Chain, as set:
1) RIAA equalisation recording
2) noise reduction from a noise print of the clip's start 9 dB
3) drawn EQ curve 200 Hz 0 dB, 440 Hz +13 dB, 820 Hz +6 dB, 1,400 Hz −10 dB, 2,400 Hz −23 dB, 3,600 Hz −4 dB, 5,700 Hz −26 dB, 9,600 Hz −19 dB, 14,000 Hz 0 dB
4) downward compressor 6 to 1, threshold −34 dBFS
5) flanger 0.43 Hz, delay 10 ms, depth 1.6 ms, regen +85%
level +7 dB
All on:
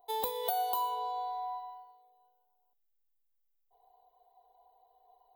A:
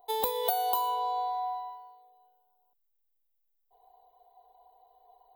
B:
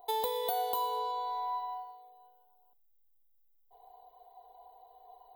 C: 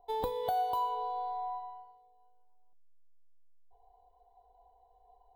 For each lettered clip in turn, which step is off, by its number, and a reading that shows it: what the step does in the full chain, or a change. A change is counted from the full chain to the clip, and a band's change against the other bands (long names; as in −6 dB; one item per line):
5, change in integrated loudness +4.0 LU
2, change in crest factor −3.0 dB
1, change in crest factor −6.0 dB